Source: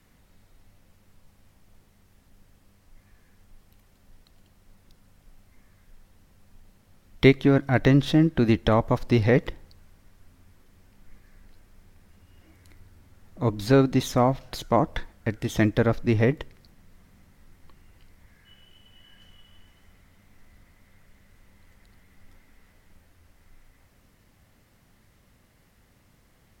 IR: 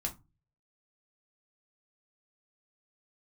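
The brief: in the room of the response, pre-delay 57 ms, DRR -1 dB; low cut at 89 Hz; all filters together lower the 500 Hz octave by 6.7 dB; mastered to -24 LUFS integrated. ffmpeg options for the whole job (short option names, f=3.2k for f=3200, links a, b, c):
-filter_complex "[0:a]highpass=89,equalizer=f=500:t=o:g=-9,asplit=2[a][b];[1:a]atrim=start_sample=2205,adelay=57[c];[b][c]afir=irnorm=-1:irlink=0,volume=-0.5dB[d];[a][d]amix=inputs=2:normalize=0,volume=-2.5dB"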